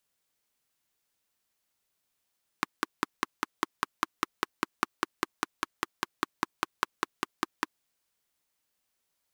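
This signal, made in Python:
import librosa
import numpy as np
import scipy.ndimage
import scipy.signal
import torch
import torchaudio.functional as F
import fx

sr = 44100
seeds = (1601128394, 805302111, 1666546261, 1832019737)

y = fx.engine_single(sr, seeds[0], length_s=5.14, rpm=600, resonances_hz=(330.0, 1100.0))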